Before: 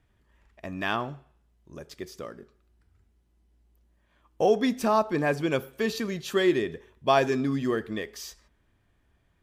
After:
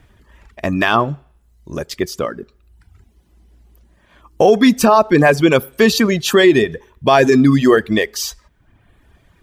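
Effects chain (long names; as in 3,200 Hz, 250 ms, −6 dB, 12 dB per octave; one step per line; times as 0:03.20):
reverb reduction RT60 0.82 s
boost into a limiter +19 dB
level −1 dB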